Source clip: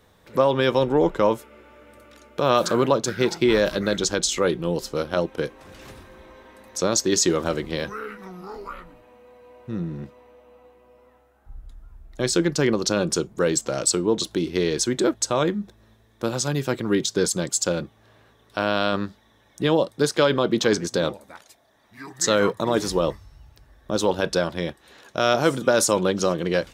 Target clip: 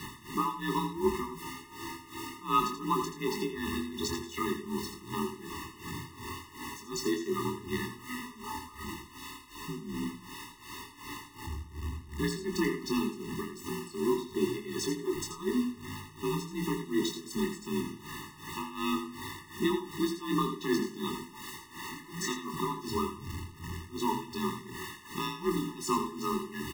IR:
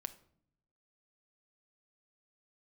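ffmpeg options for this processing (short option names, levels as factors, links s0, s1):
-filter_complex "[0:a]aeval=exprs='val(0)+0.5*0.0398*sgn(val(0))':c=same,bass=f=250:g=-3,treble=f=4000:g=-10,afreqshift=41,acrusher=bits=5:mix=0:aa=0.000001,tremolo=f=2.7:d=0.92,asplit=2[s0][s1];[s1]adelay=24,volume=0.531[s2];[s0][s2]amix=inputs=2:normalize=0,asplit=2[s3][s4];[1:a]atrim=start_sample=2205,asetrate=22491,aresample=44100,adelay=82[s5];[s4][s5]afir=irnorm=-1:irlink=0,volume=0.355[s6];[s3][s6]amix=inputs=2:normalize=0,afftfilt=real='re*eq(mod(floor(b*sr/1024/430),2),0)':imag='im*eq(mod(floor(b*sr/1024/430),2),0)':win_size=1024:overlap=0.75,volume=0.631"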